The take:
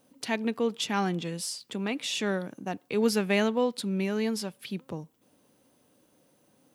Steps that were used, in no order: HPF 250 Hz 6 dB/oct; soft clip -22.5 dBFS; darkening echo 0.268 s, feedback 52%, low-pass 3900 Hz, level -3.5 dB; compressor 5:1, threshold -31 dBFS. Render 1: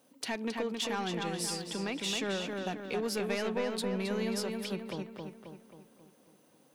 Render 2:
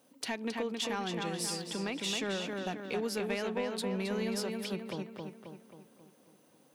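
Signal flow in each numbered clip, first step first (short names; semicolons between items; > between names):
HPF > soft clip > compressor > darkening echo; HPF > compressor > darkening echo > soft clip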